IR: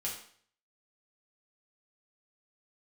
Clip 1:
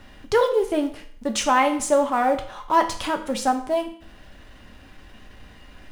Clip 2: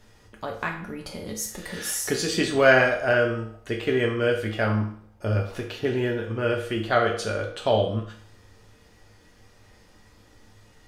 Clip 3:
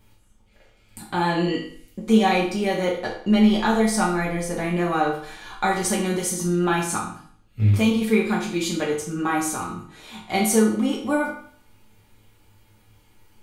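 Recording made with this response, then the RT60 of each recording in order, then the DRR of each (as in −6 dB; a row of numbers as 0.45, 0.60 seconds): 3; 0.55, 0.55, 0.55 seconds; 5.0, 0.0, −4.5 decibels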